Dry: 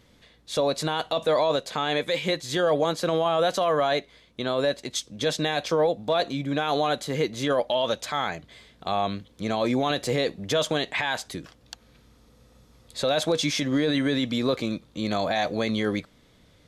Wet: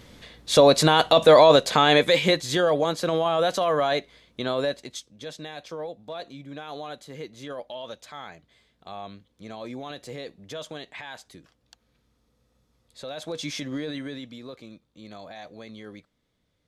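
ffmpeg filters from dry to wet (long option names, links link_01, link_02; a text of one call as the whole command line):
ffmpeg -i in.wav -af "volume=15.5dB,afade=type=out:start_time=1.77:duration=0.96:silence=0.354813,afade=type=out:start_time=4.5:duration=0.61:silence=0.237137,afade=type=in:start_time=13.18:duration=0.36:silence=0.473151,afade=type=out:start_time=13.54:duration=0.86:silence=0.298538" out.wav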